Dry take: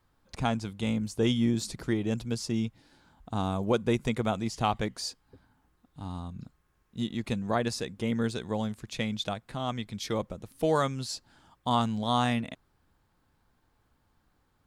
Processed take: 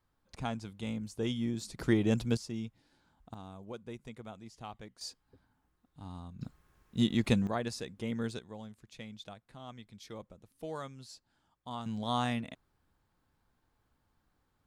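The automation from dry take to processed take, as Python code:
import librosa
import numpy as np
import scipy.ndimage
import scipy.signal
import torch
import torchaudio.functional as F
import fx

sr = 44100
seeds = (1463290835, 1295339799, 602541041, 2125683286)

y = fx.gain(x, sr, db=fx.steps((0.0, -8.0), (1.79, 1.5), (2.37, -9.0), (3.34, -18.0), (5.01, -7.5), (6.41, 4.0), (7.47, -6.5), (8.39, -15.0), (11.86, -5.5)))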